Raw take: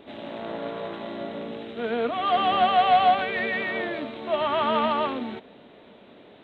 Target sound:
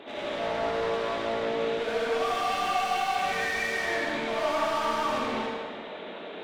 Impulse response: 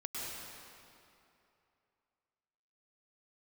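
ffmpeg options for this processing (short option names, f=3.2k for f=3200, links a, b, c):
-filter_complex "[0:a]asplit=2[a][b];[b]highpass=f=720:p=1,volume=33dB,asoftclip=type=tanh:threshold=-10.5dB[c];[a][c]amix=inputs=2:normalize=0,lowpass=f=3.6k:p=1,volume=-6dB[d];[1:a]atrim=start_sample=2205,asetrate=79380,aresample=44100[e];[d][e]afir=irnorm=-1:irlink=0,volume=-8.5dB"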